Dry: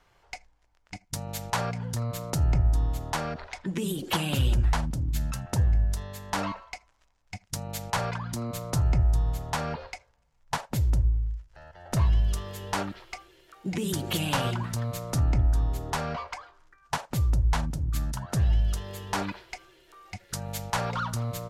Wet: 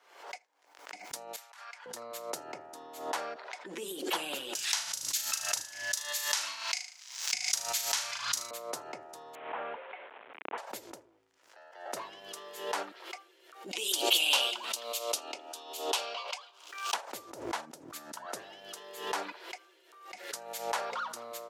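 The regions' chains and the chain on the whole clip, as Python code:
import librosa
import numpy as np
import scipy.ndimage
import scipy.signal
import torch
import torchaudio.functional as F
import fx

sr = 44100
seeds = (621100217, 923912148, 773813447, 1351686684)

y = fx.chain(x, sr, fx.ladder_highpass(hz=960.0, resonance_pct=20),
    fx.over_compress(threshold_db=-44.0, ratio=-0.5), at=(1.36, 1.86))
y = fx.chain(y, sr, fx.curve_eq(hz=(100.0, 290.0, 1400.0, 6100.0, 9200.0), db=(0, -24, -2, 14, 8)),
    fx.room_flutter(wall_m=6.4, rt60_s=0.41),
    fx.band_squash(depth_pct=100), at=(4.55, 8.51))
y = fx.chain(y, sr, fx.delta_mod(bps=16000, step_db=-35.5),
    fx.air_absorb(metres=81.0), at=(9.35, 10.58))
y = fx.chain(y, sr, fx.highpass(hz=400.0, slope=12),
    fx.high_shelf_res(hz=2300.0, db=7.5, q=3.0), at=(13.71, 16.94))
y = scipy.signal.sosfilt(scipy.signal.butter(4, 360.0, 'highpass', fs=sr, output='sos'), y)
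y = fx.pre_swell(y, sr, db_per_s=82.0)
y = F.gain(torch.from_numpy(y), -4.5).numpy()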